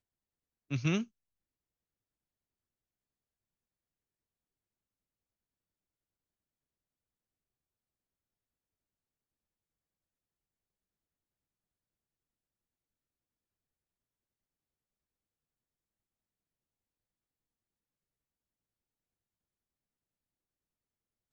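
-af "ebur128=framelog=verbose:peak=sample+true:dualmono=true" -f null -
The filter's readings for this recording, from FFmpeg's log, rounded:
Integrated loudness:
  I:         -30.9 LUFS
  Threshold: -41.5 LUFS
Loudness range:
  LRA:        13.8 LU
  Threshold: -58.6 LUFS
  LRA low:   -51.7 LUFS
  LRA high:  -37.8 LUFS
Sample peak:
  Peak:      -18.5 dBFS
True peak:
  Peak:      -18.5 dBFS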